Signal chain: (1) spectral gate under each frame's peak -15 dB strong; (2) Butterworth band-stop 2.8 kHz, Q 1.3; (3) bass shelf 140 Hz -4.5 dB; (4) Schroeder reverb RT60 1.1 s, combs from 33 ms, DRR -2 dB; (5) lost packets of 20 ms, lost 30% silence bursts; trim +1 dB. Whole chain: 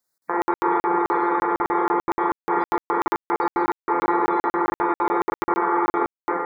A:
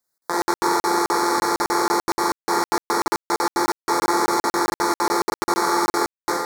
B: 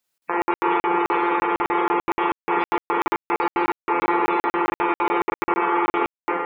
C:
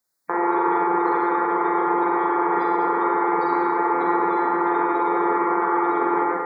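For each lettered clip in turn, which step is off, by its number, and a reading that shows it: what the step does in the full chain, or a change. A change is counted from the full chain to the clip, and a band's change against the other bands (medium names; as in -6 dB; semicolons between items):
1, 2 kHz band +3.0 dB; 2, 2 kHz band +3.5 dB; 5, 125 Hz band -2.5 dB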